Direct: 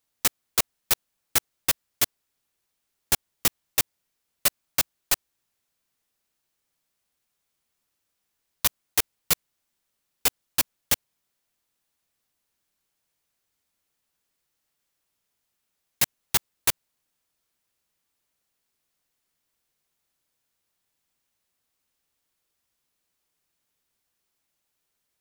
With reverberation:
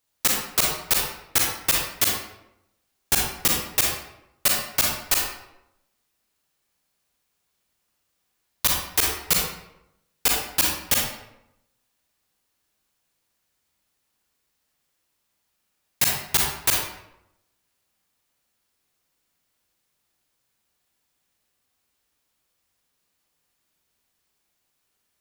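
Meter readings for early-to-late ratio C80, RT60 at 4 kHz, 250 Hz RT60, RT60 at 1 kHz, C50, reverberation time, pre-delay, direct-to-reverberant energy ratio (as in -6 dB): 4.5 dB, 0.55 s, 0.90 s, 0.80 s, 0.5 dB, 0.85 s, 34 ms, -1.5 dB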